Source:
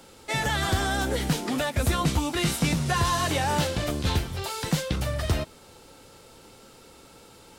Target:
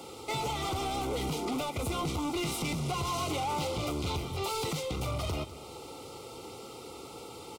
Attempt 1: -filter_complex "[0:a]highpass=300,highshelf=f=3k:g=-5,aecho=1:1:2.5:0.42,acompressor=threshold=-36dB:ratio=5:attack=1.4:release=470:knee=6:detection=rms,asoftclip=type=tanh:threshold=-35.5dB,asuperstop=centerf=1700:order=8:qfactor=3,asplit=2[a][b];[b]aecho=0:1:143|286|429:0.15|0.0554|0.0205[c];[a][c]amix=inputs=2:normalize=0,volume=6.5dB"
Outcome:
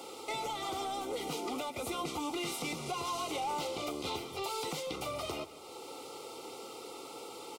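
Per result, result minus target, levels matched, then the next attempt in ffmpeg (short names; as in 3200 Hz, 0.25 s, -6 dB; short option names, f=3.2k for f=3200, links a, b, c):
125 Hz band -9.5 dB; compressor: peak gain reduction +6 dB; echo 56 ms early
-filter_complex "[0:a]highpass=100,highshelf=f=3k:g=-5,aecho=1:1:2.5:0.42,acompressor=threshold=-36dB:ratio=5:attack=1.4:release=470:knee=6:detection=rms,asoftclip=type=tanh:threshold=-35.5dB,asuperstop=centerf=1700:order=8:qfactor=3,asplit=2[a][b];[b]aecho=0:1:143|286|429:0.15|0.0554|0.0205[c];[a][c]amix=inputs=2:normalize=0,volume=6.5dB"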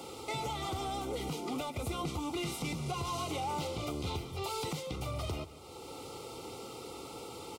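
compressor: peak gain reduction +7 dB; echo 56 ms early
-filter_complex "[0:a]highpass=100,highshelf=f=3k:g=-5,aecho=1:1:2.5:0.42,acompressor=threshold=-27dB:ratio=5:attack=1.4:release=470:knee=6:detection=rms,asoftclip=type=tanh:threshold=-35.5dB,asuperstop=centerf=1700:order=8:qfactor=3,asplit=2[a][b];[b]aecho=0:1:143|286|429:0.15|0.0554|0.0205[c];[a][c]amix=inputs=2:normalize=0,volume=6.5dB"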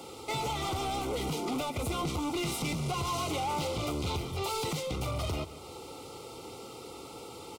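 echo 56 ms early
-filter_complex "[0:a]highpass=100,highshelf=f=3k:g=-5,aecho=1:1:2.5:0.42,acompressor=threshold=-27dB:ratio=5:attack=1.4:release=470:knee=6:detection=rms,asoftclip=type=tanh:threshold=-35.5dB,asuperstop=centerf=1700:order=8:qfactor=3,asplit=2[a][b];[b]aecho=0:1:199|398|597:0.15|0.0554|0.0205[c];[a][c]amix=inputs=2:normalize=0,volume=6.5dB"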